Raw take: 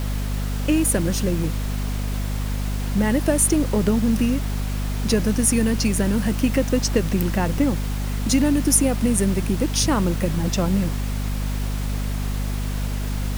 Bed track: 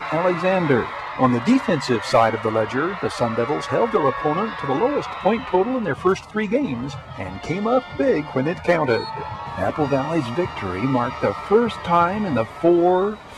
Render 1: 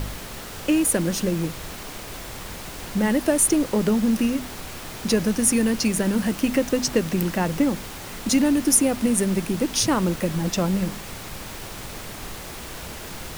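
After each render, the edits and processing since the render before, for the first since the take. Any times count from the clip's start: de-hum 50 Hz, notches 5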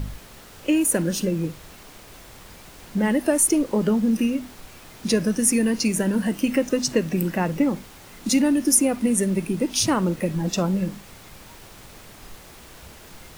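noise print and reduce 9 dB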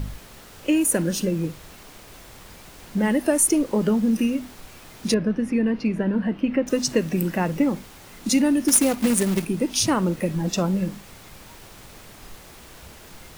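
5.14–6.67 s: distance through air 390 m; 8.68–9.45 s: companded quantiser 4-bit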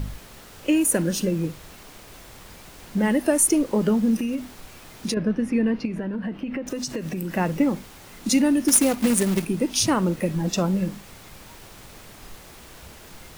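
4.17–5.17 s: compression, threshold -22 dBFS; 5.85–7.37 s: compression, threshold -25 dBFS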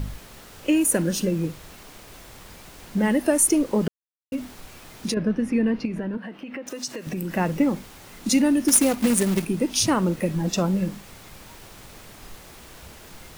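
3.88–4.32 s: mute; 6.17–7.07 s: high-pass 530 Hz 6 dB/octave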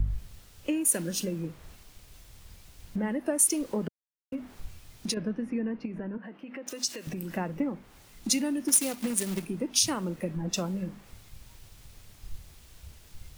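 compression 3:1, threshold -32 dBFS, peak gain reduction 14.5 dB; three bands expanded up and down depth 100%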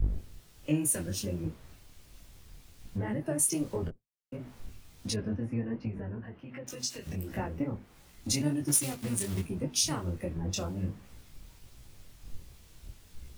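octave divider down 1 oct, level 0 dB; detune thickener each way 47 cents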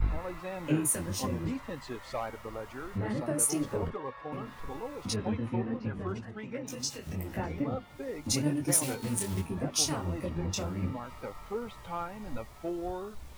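add bed track -20 dB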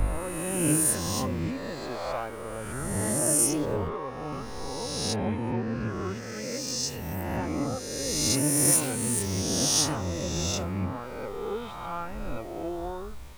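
reverse spectral sustain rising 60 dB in 1.74 s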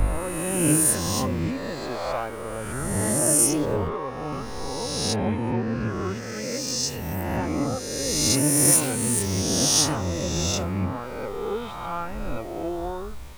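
trim +4 dB

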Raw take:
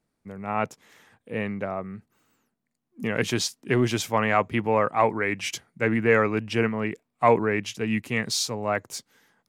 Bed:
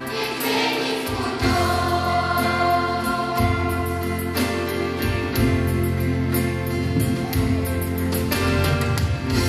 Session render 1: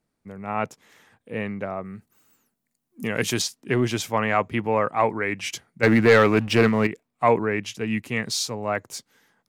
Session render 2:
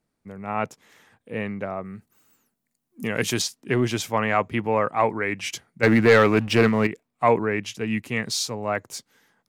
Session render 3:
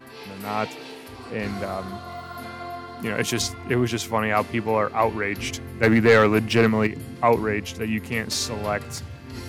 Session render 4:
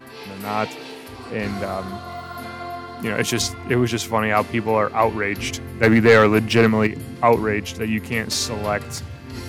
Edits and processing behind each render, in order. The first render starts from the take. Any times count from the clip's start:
1.85–3.42 s: treble shelf 6.1 kHz +12 dB; 5.83–6.87 s: waveshaping leveller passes 2
no audible change
add bed -15.5 dB
trim +3 dB

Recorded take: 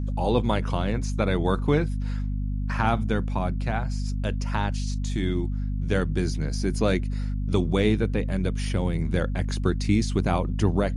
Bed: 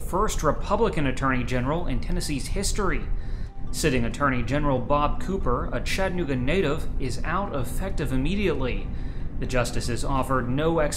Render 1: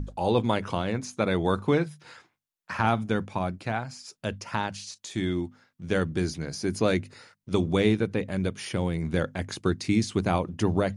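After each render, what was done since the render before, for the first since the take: hum notches 50/100/150/200/250 Hz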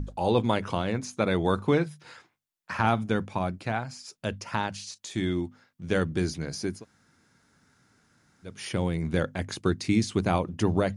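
6.73–8.54 s: room tone, crossfade 0.24 s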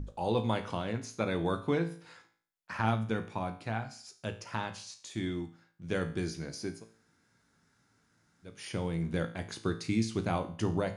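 feedback comb 56 Hz, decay 0.48 s, harmonics all, mix 70%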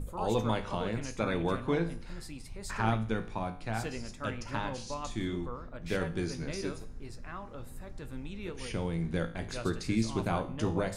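add bed -16.5 dB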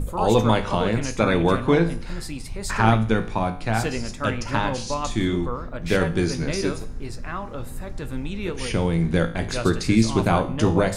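trim +11.5 dB

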